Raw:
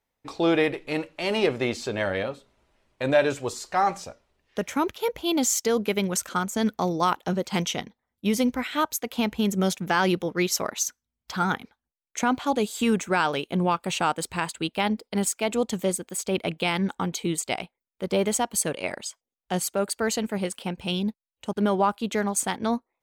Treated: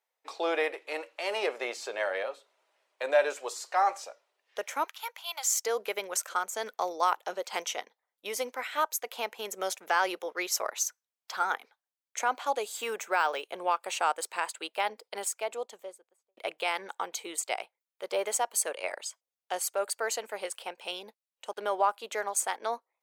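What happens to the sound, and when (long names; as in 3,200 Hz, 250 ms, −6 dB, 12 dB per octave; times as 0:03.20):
0:04.84–0:05.49: high-pass filter 880 Hz 24 dB per octave
0:12.77–0:13.42: linearly interpolated sample-rate reduction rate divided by 2×
0:15.02–0:16.37: fade out and dull
whole clip: high-pass filter 490 Hz 24 dB per octave; dynamic equaliser 3,500 Hz, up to −5 dB, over −42 dBFS, Q 1.6; level −2.5 dB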